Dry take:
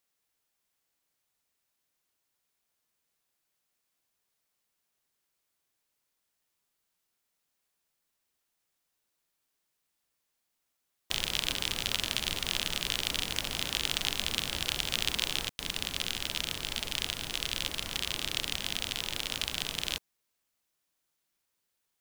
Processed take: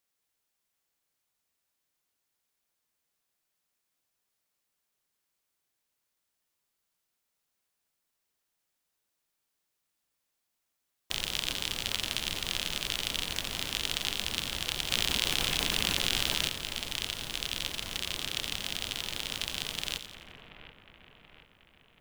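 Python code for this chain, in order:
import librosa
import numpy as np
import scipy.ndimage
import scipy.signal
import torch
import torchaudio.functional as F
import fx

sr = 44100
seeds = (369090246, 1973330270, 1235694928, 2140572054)

p1 = x + fx.echo_split(x, sr, split_hz=2500.0, low_ms=731, high_ms=87, feedback_pct=52, wet_db=-10, dry=0)
p2 = fx.env_flatten(p1, sr, amount_pct=100, at=(14.9, 16.47), fade=0.02)
y = p2 * 10.0 ** (-1.5 / 20.0)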